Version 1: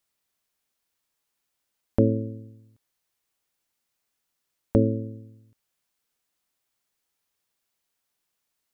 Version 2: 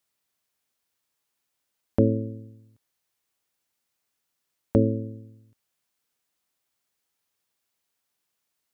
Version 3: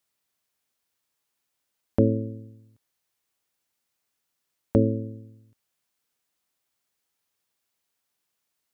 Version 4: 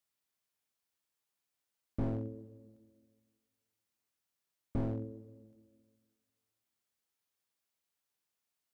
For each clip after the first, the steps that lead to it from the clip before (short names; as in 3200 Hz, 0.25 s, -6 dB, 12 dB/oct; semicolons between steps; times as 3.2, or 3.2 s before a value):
HPF 49 Hz
nothing audible
reverb RT60 1.9 s, pre-delay 6 ms, DRR 15.5 dB; slew limiter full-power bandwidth 18 Hz; gain -8 dB